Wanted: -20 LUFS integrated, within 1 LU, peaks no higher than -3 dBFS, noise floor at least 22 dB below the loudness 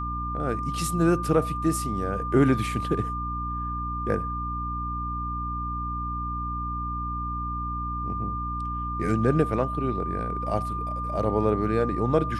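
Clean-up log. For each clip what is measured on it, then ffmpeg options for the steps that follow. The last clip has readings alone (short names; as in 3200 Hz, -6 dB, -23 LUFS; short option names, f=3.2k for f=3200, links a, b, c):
hum 60 Hz; harmonics up to 300 Hz; hum level -30 dBFS; steady tone 1200 Hz; tone level -30 dBFS; loudness -27.0 LUFS; peak -7.5 dBFS; loudness target -20.0 LUFS
-> -af "bandreject=f=60:t=h:w=6,bandreject=f=120:t=h:w=6,bandreject=f=180:t=h:w=6,bandreject=f=240:t=h:w=6,bandreject=f=300:t=h:w=6"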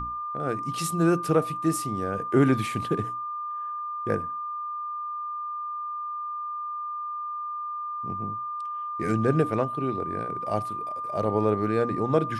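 hum none; steady tone 1200 Hz; tone level -30 dBFS
-> -af "bandreject=f=1.2k:w=30"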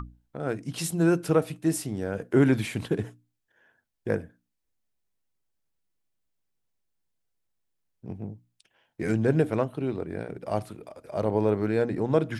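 steady tone none; loudness -27.5 LUFS; peak -9.0 dBFS; loudness target -20.0 LUFS
-> -af "volume=7.5dB,alimiter=limit=-3dB:level=0:latency=1"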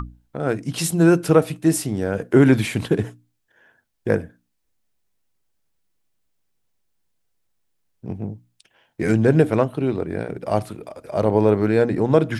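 loudness -20.0 LUFS; peak -3.0 dBFS; noise floor -72 dBFS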